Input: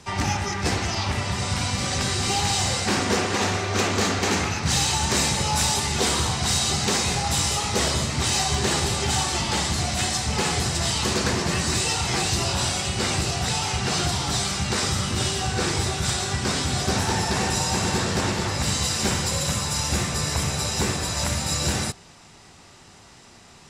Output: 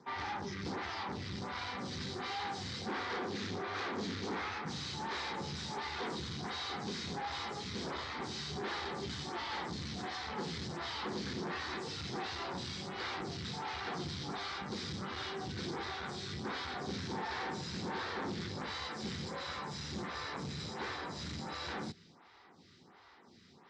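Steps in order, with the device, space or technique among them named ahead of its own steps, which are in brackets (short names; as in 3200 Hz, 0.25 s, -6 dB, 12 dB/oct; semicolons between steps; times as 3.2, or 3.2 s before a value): vibe pedal into a guitar amplifier (photocell phaser 1.4 Hz; tube stage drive 31 dB, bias 0.6; speaker cabinet 110–4500 Hz, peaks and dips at 120 Hz -6 dB, 620 Hz -8 dB, 2700 Hz -8 dB); gain -2.5 dB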